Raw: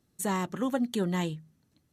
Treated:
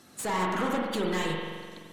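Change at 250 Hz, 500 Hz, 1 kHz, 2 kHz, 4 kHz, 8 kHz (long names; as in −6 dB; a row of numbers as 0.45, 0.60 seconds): −2.0, +2.5, +5.5, +7.0, +5.5, 0.0 decibels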